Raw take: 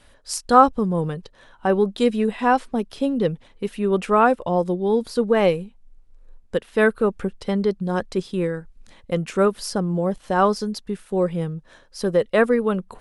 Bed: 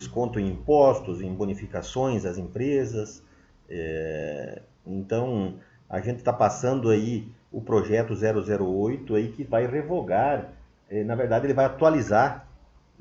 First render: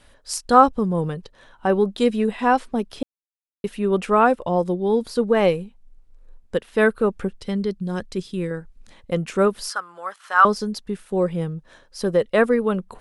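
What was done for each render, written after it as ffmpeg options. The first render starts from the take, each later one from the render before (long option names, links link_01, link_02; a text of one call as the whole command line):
ffmpeg -i in.wav -filter_complex "[0:a]asettb=1/sr,asplit=3[link_01][link_02][link_03];[link_01]atrim=end=7.414[link_04];[link_02]atrim=start=7.41:end=8.51,asetpts=PTS-STARTPTS,afade=type=in:duration=0.004:curve=qsin,afade=type=out:start_time=1.096:duration=0.004:curve=qsin,equalizer=frequency=790:width=0.65:gain=-8.5[link_05];[link_03]atrim=start=8.506[link_06];[link_04][link_05]acrossfade=duration=0.004:curve1=hsin:curve2=qsin[link_07];[link_07][link_06]acrossfade=duration=0.004:curve1=qsin:curve2=hsin,asettb=1/sr,asplit=3[link_08][link_09][link_10];[link_08]atrim=end=9.694[link_11];[link_09]atrim=start=9.69:end=10.45,asetpts=PTS-STARTPTS,afade=type=in:duration=0.004:curve=qsin,afade=type=out:start_time=0.756:duration=0.004:curve=qsin,highpass=frequency=1300:width_type=q:width=3.9[link_12];[link_10]atrim=start=10.446[link_13];[link_11][link_12]acrossfade=duration=0.004:curve1=hsin:curve2=qsin[link_14];[link_14][link_13]acrossfade=duration=0.004:curve1=qsin:curve2=hsin,asplit=3[link_15][link_16][link_17];[link_15]atrim=end=3.03,asetpts=PTS-STARTPTS,afade=type=out:start_time=3.026:duration=0.004:curve=hsin[link_18];[link_16]atrim=start=3.03:end=3.64,asetpts=PTS-STARTPTS,volume=0[link_19];[link_17]atrim=start=3.64,asetpts=PTS-STARTPTS,afade=type=in:duration=0.004:curve=hsin[link_20];[link_18][link_19][link_20]concat=n=3:v=0:a=1" out.wav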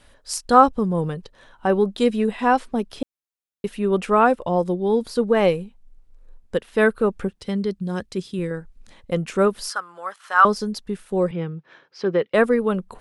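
ffmpeg -i in.wav -filter_complex "[0:a]asettb=1/sr,asplit=3[link_01][link_02][link_03];[link_01]atrim=end=7.274[link_04];[link_02]atrim=start=7.27:end=8.39,asetpts=PTS-STARTPTS,afade=type=in:duration=0.004:curve=qsin,afade=type=out:start_time=1.116:duration=0.004:curve=qsin,highpass=41[link_05];[link_03]atrim=start=8.386[link_06];[link_04][link_05]acrossfade=duration=0.004:curve1=hsin:curve2=qsin[link_07];[link_07][link_06]acrossfade=duration=0.004:curve1=qsin:curve2=hsin,asettb=1/sr,asplit=3[link_08][link_09][link_10];[link_08]atrim=end=11.314[link_11];[link_09]atrim=start=11.31:end=12.34,asetpts=PTS-STARTPTS,afade=type=in:duration=0.004:curve=qsin,afade=type=out:start_time=1.026:duration=0.004:curve=qsin,highpass=frequency=140:width=0.5412,highpass=frequency=140:width=1.3066,equalizer=frequency=230:width_type=q:width=4:gain=-9,equalizer=frequency=370:width_type=q:width=4:gain=4,equalizer=frequency=590:width_type=q:width=4:gain=-6,equalizer=frequency=1400:width_type=q:width=4:gain=3,equalizer=frequency=2300:width_type=q:width=4:gain=5,equalizer=frequency=4000:width_type=q:width=4:gain=-4,lowpass=frequency=4800:width=0.5412,lowpass=frequency=4800:width=1.3066[link_12];[link_10]atrim=start=12.336[link_13];[link_11][link_12]acrossfade=duration=0.004:curve1=hsin:curve2=qsin[link_14];[link_14][link_13]acrossfade=duration=0.004:curve1=qsin:curve2=hsin" out.wav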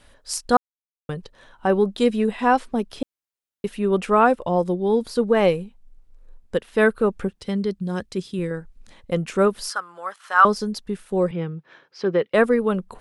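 ffmpeg -i in.wav -filter_complex "[0:a]asplit=3[link_01][link_02][link_03];[link_01]atrim=end=0.57,asetpts=PTS-STARTPTS,afade=type=out:start_time=0.566:duration=0.004:curve=hsin[link_04];[link_02]atrim=start=0.57:end=1.09,asetpts=PTS-STARTPTS,volume=0[link_05];[link_03]atrim=start=1.09,asetpts=PTS-STARTPTS,afade=type=in:duration=0.004:curve=hsin[link_06];[link_04][link_05][link_06]concat=n=3:v=0:a=1" out.wav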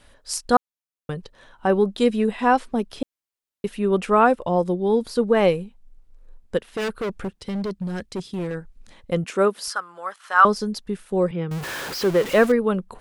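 ffmpeg -i in.wav -filter_complex "[0:a]asplit=3[link_01][link_02][link_03];[link_01]afade=type=out:start_time=6.57:duration=0.02[link_04];[link_02]asoftclip=type=hard:threshold=-23.5dB,afade=type=in:start_time=6.57:duration=0.02,afade=type=out:start_time=8.54:duration=0.02[link_05];[link_03]afade=type=in:start_time=8.54:duration=0.02[link_06];[link_04][link_05][link_06]amix=inputs=3:normalize=0,asettb=1/sr,asplit=3[link_07][link_08][link_09];[link_07]atrim=end=9.244[link_10];[link_08]atrim=start=9.24:end=9.68,asetpts=PTS-STARTPTS,afade=type=in:duration=0.004:curve=qsin,afade=type=out:start_time=0.436:duration=0.004:curve=qsin,highpass=240[link_11];[link_09]atrim=start=9.676[link_12];[link_10][link_11]acrossfade=duration=0.004:curve1=hsin:curve2=qsin[link_13];[link_13][link_12]acrossfade=duration=0.004:curve1=qsin:curve2=hsin,asettb=1/sr,asplit=3[link_14][link_15][link_16];[link_14]atrim=end=11.514[link_17];[link_15]atrim=start=11.51:end=12.52,asetpts=PTS-STARTPTS,afade=type=in:duration=0.004:curve=qsin,afade=type=out:start_time=1.006:duration=0.004:curve=qsin,aeval=exprs='val(0)+0.5*0.0531*sgn(val(0))':channel_layout=same[link_18];[link_16]atrim=start=12.516[link_19];[link_17][link_18]acrossfade=duration=0.004:curve1=hsin:curve2=qsin[link_20];[link_20][link_19]acrossfade=duration=0.004:curve1=qsin:curve2=hsin" out.wav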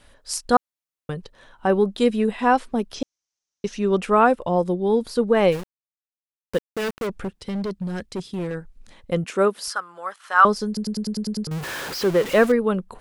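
ffmpeg -i in.wav -filter_complex "[0:a]asettb=1/sr,asplit=3[link_01][link_02][link_03];[link_01]atrim=end=2.944[link_04];[link_02]atrim=start=2.94:end=3.98,asetpts=PTS-STARTPTS,afade=type=in:duration=0.004:curve=qsin,afade=type=out:start_time=1.036:duration=0.004:curve=qsin,lowpass=frequency=6000:width_type=q:width=6.5[link_05];[link_03]atrim=start=3.976[link_06];[link_04][link_05]acrossfade=duration=0.004:curve1=hsin:curve2=qsin[link_07];[link_07][link_06]acrossfade=duration=0.004:curve1=qsin:curve2=hsin,asplit=3[link_08][link_09][link_10];[link_08]afade=type=out:start_time=5.51:duration=0.02[link_11];[link_09]aeval=exprs='val(0)*gte(abs(val(0)),0.0299)':channel_layout=same,afade=type=in:start_time=5.51:duration=0.02,afade=type=out:start_time=7.06:duration=0.02[link_12];[link_10]afade=type=in:start_time=7.06:duration=0.02[link_13];[link_11][link_12][link_13]amix=inputs=3:normalize=0,asplit=9[link_14][link_15][link_16][link_17][link_18][link_19][link_20][link_21][link_22];[link_14]atrim=end=10.772[link_23];[link_15]atrim=start=10.668:end=10.772[link_24];[link_16]atrim=start=10.668:end=10.772[link_25];[link_17]atrim=start=10.668:end=10.772[link_26];[link_18]atrim=start=10.668:end=10.772[link_27];[link_19]atrim=start=10.668:end=10.772[link_28];[link_20]atrim=start=10.668:end=10.772[link_29];[link_21]atrim=start=10.668:end=10.772[link_30];[link_22]atrim=start=11.468[link_31];[link_23][link_24]acrossfade=duration=0.004:curve1=hsin:curve2=hsin[link_32];[link_32][link_25]acrossfade=duration=0.004:curve1=hsin:curve2=hsin[link_33];[link_33][link_26]acrossfade=duration=0.004:curve1=hsin:curve2=hsin[link_34];[link_34][link_27]acrossfade=duration=0.004:curve1=hsin:curve2=hsin[link_35];[link_35][link_28]acrossfade=duration=0.004:curve1=hsin:curve2=hsin[link_36];[link_36][link_29]acrossfade=duration=0.004:curve1=hsin:curve2=hsin[link_37];[link_37][link_30]acrossfade=duration=0.004:curve1=hsin:curve2=hsin[link_38];[link_38][link_31]acrossfade=duration=0.004:curve1=hsin:curve2=hsin" out.wav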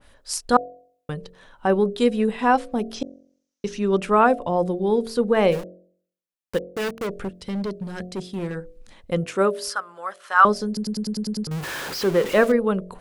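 ffmpeg -i in.wav -af "bandreject=frequency=45.16:width_type=h:width=4,bandreject=frequency=90.32:width_type=h:width=4,bandreject=frequency=135.48:width_type=h:width=4,bandreject=frequency=180.64:width_type=h:width=4,bandreject=frequency=225.8:width_type=h:width=4,bandreject=frequency=270.96:width_type=h:width=4,bandreject=frequency=316.12:width_type=h:width=4,bandreject=frequency=361.28:width_type=h:width=4,bandreject=frequency=406.44:width_type=h:width=4,bandreject=frequency=451.6:width_type=h:width=4,bandreject=frequency=496.76:width_type=h:width=4,bandreject=frequency=541.92:width_type=h:width=4,bandreject=frequency=587.08:width_type=h:width=4,bandreject=frequency=632.24:width_type=h:width=4,bandreject=frequency=677.4:width_type=h:width=4,bandreject=frequency=722.56:width_type=h:width=4,adynamicequalizer=threshold=0.0316:dfrequency=2100:dqfactor=0.7:tfrequency=2100:tqfactor=0.7:attack=5:release=100:ratio=0.375:range=1.5:mode=cutabove:tftype=highshelf" out.wav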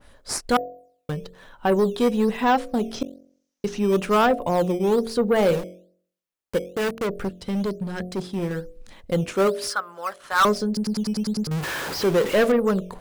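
ffmpeg -i in.wav -filter_complex "[0:a]asplit=2[link_01][link_02];[link_02]acrusher=samples=9:mix=1:aa=0.000001:lfo=1:lforange=14.4:lforate=1.1,volume=-9dB[link_03];[link_01][link_03]amix=inputs=2:normalize=0,asoftclip=type=tanh:threshold=-13dB" out.wav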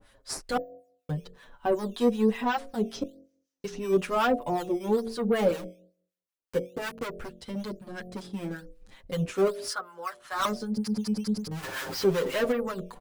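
ffmpeg -i in.wav -filter_complex "[0:a]acrossover=split=910[link_01][link_02];[link_01]aeval=exprs='val(0)*(1-0.7/2+0.7/2*cos(2*PI*5.3*n/s))':channel_layout=same[link_03];[link_02]aeval=exprs='val(0)*(1-0.7/2-0.7/2*cos(2*PI*5.3*n/s))':channel_layout=same[link_04];[link_03][link_04]amix=inputs=2:normalize=0,asplit=2[link_05][link_06];[link_06]adelay=7,afreqshift=-0.35[link_07];[link_05][link_07]amix=inputs=2:normalize=1" out.wav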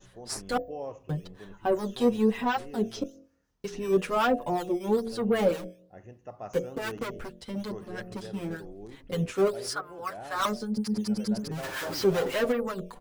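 ffmpeg -i in.wav -i bed.wav -filter_complex "[1:a]volume=-20dB[link_01];[0:a][link_01]amix=inputs=2:normalize=0" out.wav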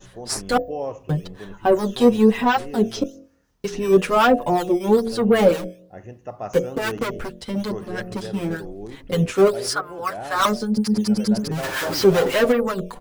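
ffmpeg -i in.wav -af "volume=9dB" out.wav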